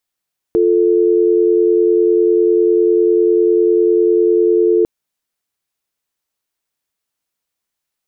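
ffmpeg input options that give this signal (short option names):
-f lavfi -i "aevalsrc='0.251*(sin(2*PI*350*t)+sin(2*PI*440*t))':d=4.3:s=44100"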